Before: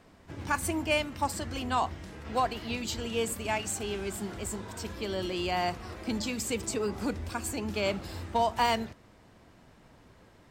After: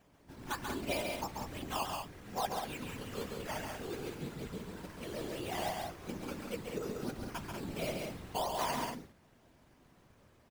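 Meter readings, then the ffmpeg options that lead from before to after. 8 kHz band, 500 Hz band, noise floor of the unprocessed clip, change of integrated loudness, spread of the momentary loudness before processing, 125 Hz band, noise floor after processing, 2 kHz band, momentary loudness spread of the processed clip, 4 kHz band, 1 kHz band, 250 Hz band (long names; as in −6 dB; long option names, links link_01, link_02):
−10.0 dB, −7.0 dB, −58 dBFS, −7.5 dB, 9 LU, −6.0 dB, −65 dBFS, −8.5 dB, 8 LU, −7.5 dB, −7.5 dB, −7.5 dB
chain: -filter_complex "[0:a]acrossover=split=3500[link_01][link_02];[link_02]acompressor=threshold=-46dB:ratio=4:attack=1:release=60[link_03];[link_01][link_03]amix=inputs=2:normalize=0,flanger=delay=4.9:depth=5.1:regen=61:speed=0.45:shape=sinusoidal,acrusher=samples=9:mix=1:aa=0.000001:lfo=1:lforange=5.4:lforate=2.9,afftfilt=real='hypot(re,im)*cos(2*PI*random(0))':imag='hypot(re,im)*sin(2*PI*random(1))':win_size=512:overlap=0.75,aecho=1:1:137|189.5:0.562|0.447,volume=1.5dB"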